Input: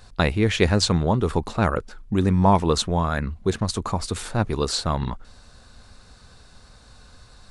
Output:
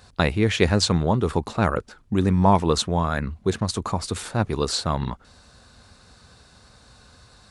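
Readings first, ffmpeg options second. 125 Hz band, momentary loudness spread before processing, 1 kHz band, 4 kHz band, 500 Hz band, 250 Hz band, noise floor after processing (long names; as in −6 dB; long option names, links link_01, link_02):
−0.5 dB, 9 LU, 0.0 dB, 0.0 dB, 0.0 dB, 0.0 dB, −54 dBFS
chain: -af "highpass=63"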